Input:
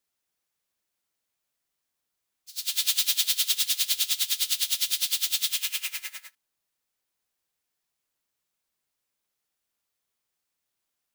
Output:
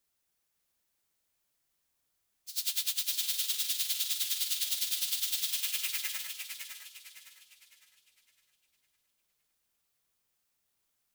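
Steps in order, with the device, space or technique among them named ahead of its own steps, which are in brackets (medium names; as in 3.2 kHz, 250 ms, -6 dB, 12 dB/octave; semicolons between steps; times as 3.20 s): ASMR close-microphone chain (bass shelf 120 Hz +7 dB; compression 6:1, threshold -31 dBFS, peak gain reduction 11.5 dB; treble shelf 8.4 kHz +4 dB); modulated delay 558 ms, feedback 38%, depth 73 cents, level -6.5 dB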